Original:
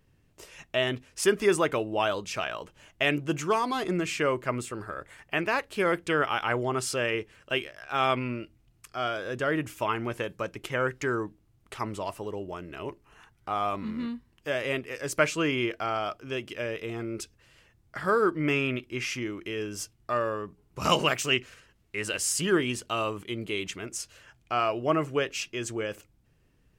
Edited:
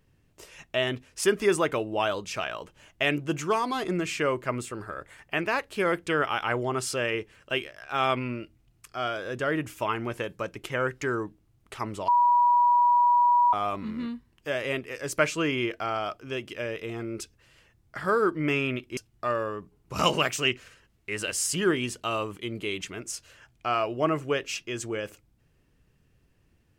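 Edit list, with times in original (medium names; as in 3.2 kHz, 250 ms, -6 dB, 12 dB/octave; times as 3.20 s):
12.08–13.53 s: bleep 968 Hz -17 dBFS
18.97–19.83 s: delete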